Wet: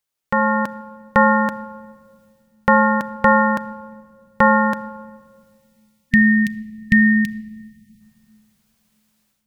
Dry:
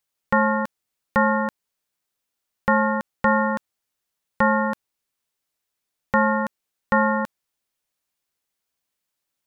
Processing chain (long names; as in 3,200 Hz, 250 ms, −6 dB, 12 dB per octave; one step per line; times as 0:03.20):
time-frequency box erased 0:05.60–0:08.00, 240–1,800 Hz
automatic gain control gain up to 15 dB
rectangular room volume 3,100 cubic metres, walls mixed, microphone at 0.41 metres
level −1 dB